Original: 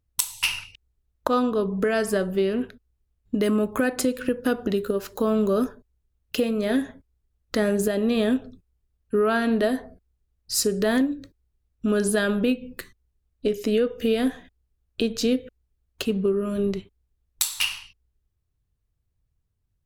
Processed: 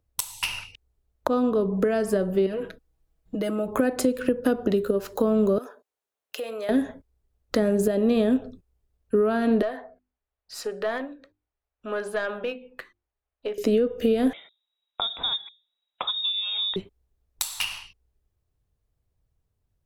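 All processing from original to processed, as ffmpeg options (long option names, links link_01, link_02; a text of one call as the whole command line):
ffmpeg -i in.wav -filter_complex "[0:a]asettb=1/sr,asplit=3[link_01][link_02][link_03];[link_01]atrim=end=2.464[link_04];[link_02]atrim=start=2.46:end=3.68,asetpts=PTS-STARTPTS,afade=type=in:duration=0.004:curve=qsin,afade=type=out:start_time=1.216:duration=0.004:curve=qsin,aecho=1:1:6.2:0.96,atrim=end_sample=53802,acompressor=threshold=-34dB:ratio=2:attack=3.2:release=140:knee=1:detection=peak[link_05];[link_03]atrim=start=3.676[link_06];[link_04][link_05]acrossfade=duration=0.004:curve1=hsin:curve2=qsin[link_07];[link_07][link_06]acrossfade=duration=0.004:curve1=qsin:curve2=hsin,asettb=1/sr,asplit=3[link_08][link_09][link_10];[link_08]atrim=end=5.584[link_11];[link_09]atrim=start=5.58:end=6.69,asetpts=PTS-STARTPTS,afade=type=in:duration=0.004:curve=qsin,afade=type=out:start_time=1.106:duration=0.004:curve=qsin,highpass=670,equalizer=frequency=4700:width_type=o:width=0.21:gain=-3,acompressor=threshold=-34dB:ratio=4:attack=3.2:release=140:knee=1:detection=peak[link_12];[link_10]atrim=start=6.686[link_13];[link_11][link_12]acrossfade=duration=0.004:curve1=hsin:curve2=qsin[link_14];[link_14][link_13]acrossfade=duration=0.004:curve1=qsin:curve2=hsin,asettb=1/sr,asplit=3[link_15][link_16][link_17];[link_15]atrim=end=9.624[link_18];[link_16]atrim=start=9.62:end=13.58,asetpts=PTS-STARTPTS,afade=type=in:duration=0.004:curve=qsin,afade=type=out:start_time=3.956:duration=0.004:curve=qsin,acrossover=split=600 3300:gain=0.141 1 0.141[link_19][link_20][link_21];[link_19][link_20][link_21]amix=inputs=3:normalize=0,bandreject=frequency=50:width_type=h:width=6,bandreject=frequency=100:width_type=h:width=6,bandreject=frequency=150:width_type=h:width=6,bandreject=frequency=200:width_type=h:width=6,bandreject=frequency=250:width_type=h:width=6,bandreject=frequency=300:width_type=h:width=6,bandreject=frequency=350:width_type=h:width=6,aeval=exprs='(tanh(8.91*val(0)+0.35)-tanh(0.35))/8.91':channel_layout=same[link_22];[link_17]atrim=start=13.576[link_23];[link_18][link_22]acrossfade=duration=0.004:curve1=hsin:curve2=qsin[link_24];[link_24][link_23]acrossfade=duration=0.004:curve1=qsin:curve2=hsin,asettb=1/sr,asplit=3[link_25][link_26][link_27];[link_25]atrim=end=14.334[link_28];[link_26]atrim=start=14.33:end=16.76,asetpts=PTS-STARTPTS,afade=type=in:duration=0.004:curve=qsin,afade=type=out:start_time=2.426:duration=0.004:curve=qsin,highpass=frequency=140:poles=1,bandreject=frequency=60:width_type=h:width=6,bandreject=frequency=120:width_type=h:width=6,bandreject=frequency=180:width_type=h:width=6,bandreject=frequency=240:width_type=h:width=6,bandreject=frequency=300:width_type=h:width=6,bandreject=frequency=360:width_type=h:width=6,bandreject=frequency=420:width_type=h:width=6,bandreject=frequency=480:width_type=h:width=6,bandreject=frequency=540:width_type=h:width=6,bandreject=frequency=600:width_type=h:width=6,lowpass=frequency=3300:width_type=q:width=0.5098,lowpass=frequency=3300:width_type=q:width=0.6013,lowpass=frequency=3300:width_type=q:width=0.9,lowpass=frequency=3300:width_type=q:width=2.563,afreqshift=-3900[link_29];[link_27]atrim=start=16.756[link_30];[link_28][link_29]acrossfade=duration=0.004:curve1=hsin:curve2=qsin[link_31];[link_31][link_30]acrossfade=duration=0.004:curve1=qsin:curve2=hsin,equalizer=frequency=600:width=0.84:gain=7.5,acrossover=split=310[link_32][link_33];[link_33]acompressor=threshold=-24dB:ratio=6[link_34];[link_32][link_34]amix=inputs=2:normalize=0" out.wav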